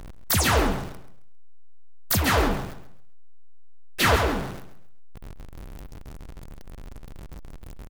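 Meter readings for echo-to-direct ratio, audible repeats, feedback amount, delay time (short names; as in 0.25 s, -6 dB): -12.5 dB, 3, 31%, 0.134 s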